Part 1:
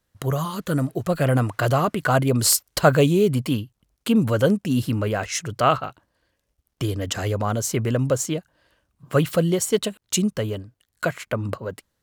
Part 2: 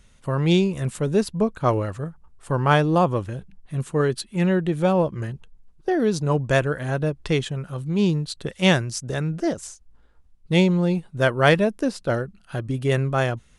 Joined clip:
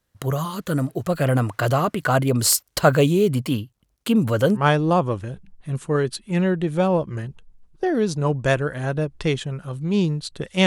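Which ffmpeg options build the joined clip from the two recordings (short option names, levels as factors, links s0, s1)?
-filter_complex "[0:a]apad=whole_dur=10.66,atrim=end=10.66,atrim=end=4.65,asetpts=PTS-STARTPTS[s0];[1:a]atrim=start=2.58:end=8.71,asetpts=PTS-STARTPTS[s1];[s0][s1]acrossfade=d=0.12:c1=tri:c2=tri"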